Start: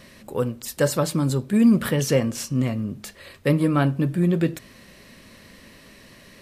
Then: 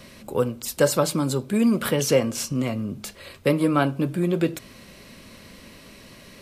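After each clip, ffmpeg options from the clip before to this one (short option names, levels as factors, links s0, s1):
-filter_complex "[0:a]bandreject=f=1800:w=8.1,acrossover=split=280[s0][s1];[s0]acompressor=threshold=0.0316:ratio=6[s2];[s2][s1]amix=inputs=2:normalize=0,volume=1.33"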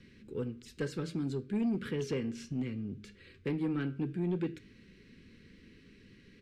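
-af "firequalizer=gain_entry='entry(450,0);entry(630,-30);entry(1600,-3);entry(13000,-29)':delay=0.05:min_phase=1,flanger=delay=9.8:depth=3.1:regen=84:speed=0.64:shape=sinusoidal,asoftclip=type=tanh:threshold=0.0944,volume=0.596"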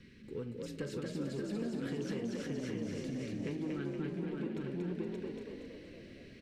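-filter_complex "[0:a]asplit=2[s0][s1];[s1]aecho=0:1:42|575|845:0.15|0.631|0.211[s2];[s0][s2]amix=inputs=2:normalize=0,acompressor=threshold=0.0141:ratio=6,asplit=2[s3][s4];[s4]asplit=8[s5][s6][s7][s8][s9][s10][s11][s12];[s5]adelay=234,afreqshift=43,volume=0.708[s13];[s6]adelay=468,afreqshift=86,volume=0.389[s14];[s7]adelay=702,afreqshift=129,volume=0.214[s15];[s8]adelay=936,afreqshift=172,volume=0.117[s16];[s9]adelay=1170,afreqshift=215,volume=0.0646[s17];[s10]adelay=1404,afreqshift=258,volume=0.0355[s18];[s11]adelay=1638,afreqshift=301,volume=0.0195[s19];[s12]adelay=1872,afreqshift=344,volume=0.0108[s20];[s13][s14][s15][s16][s17][s18][s19][s20]amix=inputs=8:normalize=0[s21];[s3][s21]amix=inputs=2:normalize=0"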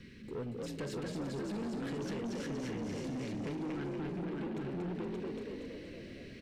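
-af "asoftclip=type=tanh:threshold=0.0112,volume=1.68"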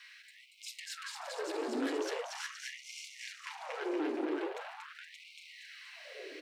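-af "afftfilt=real='re*gte(b*sr/1024,250*pow(2100/250,0.5+0.5*sin(2*PI*0.42*pts/sr)))':imag='im*gte(b*sr/1024,250*pow(2100/250,0.5+0.5*sin(2*PI*0.42*pts/sr)))':win_size=1024:overlap=0.75,volume=2.11"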